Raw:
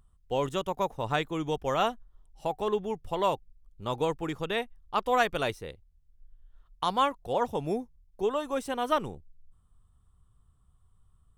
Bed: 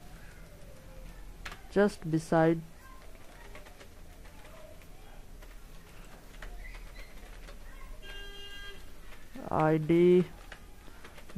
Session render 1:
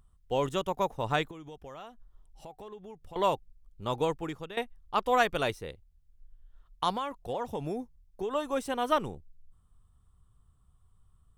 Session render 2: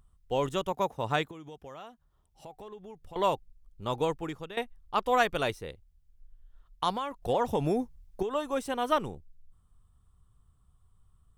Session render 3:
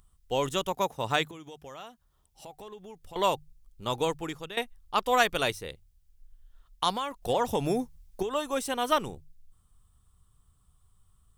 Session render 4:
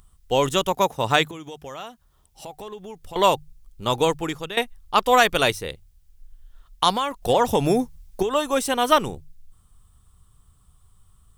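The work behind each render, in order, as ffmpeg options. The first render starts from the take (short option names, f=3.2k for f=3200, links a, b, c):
-filter_complex "[0:a]asettb=1/sr,asplit=3[a][b][c];[a]atrim=end=1.314[d];[b]atrim=start=1.31:end=3.16,asetpts=PTS-STARTPTS,afade=t=in:d=0.004:c=qsin,afade=t=out:st=1.846:d=0.004:c=qsin,acompressor=threshold=-45dB:ratio=4:attack=3.2:release=140:knee=1:detection=peak[e];[c]atrim=start=3.156[f];[d][e]acrossfade=d=0.004:c1=hsin:c2=qsin[g];[g][f]acrossfade=d=0.004:c1=qsin:c2=hsin,asettb=1/sr,asplit=3[h][i][j];[h]atrim=end=6.914[k];[i]atrim=start=6.91:end=8.35,asetpts=PTS-STARTPTS,afade=t=in:d=0.004:c=qsin,afade=t=out:st=1.436:d=0.004:c=qsin,acompressor=threshold=-29dB:ratio=6:attack=3.2:release=140:knee=1:detection=peak[l];[j]atrim=start=8.346[m];[k][l]acrossfade=d=0.004:c1=hsin:c2=qsin[n];[n][m]acrossfade=d=0.004:c1=qsin:c2=hsin,asplit=2[o][p];[o]atrim=end=4.57,asetpts=PTS-STARTPTS,afade=t=out:st=3.91:d=0.66:c=qsin:silence=0.158489[q];[p]atrim=start=4.57,asetpts=PTS-STARTPTS,afade=t=in:d=0.004:c=hsin:silence=0.158489[r];[q][r]concat=n=2:v=0:a=1"
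-filter_complex "[0:a]asettb=1/sr,asplit=3[a][b][c];[a]atrim=end=0.724[d];[b]atrim=start=0.72:end=2.46,asetpts=PTS-STARTPTS,afade=t=in:d=0.004:c=qsin,afade=t=out:st=1.736:d=0.004:c=qsin,highpass=68[e];[c]atrim=start=2.456[f];[d][e]acrossfade=d=0.004:c1=hsin:c2=qsin[g];[g][f]acrossfade=d=0.004:c1=qsin:c2=hsin,asettb=1/sr,asplit=3[h][i][j];[h]atrim=end=7.224[k];[i]atrim=start=7.22:end=8.23,asetpts=PTS-STARTPTS,afade=t=in:d=0.004:c=qsin,afade=t=out:st=1.006:d=0.004:c=qsin,acontrast=72[l];[j]atrim=start=8.226[m];[k][l]acrossfade=d=0.004:c1=hsin:c2=qsin[n];[n][m]acrossfade=d=0.004:c1=qsin:c2=hsin"
-af "highshelf=f=2.6k:g=9.5,bandreject=f=50:t=h:w=6,bandreject=f=100:t=h:w=6,bandreject=f=150:t=h:w=6"
-af "volume=8dB,alimiter=limit=-3dB:level=0:latency=1"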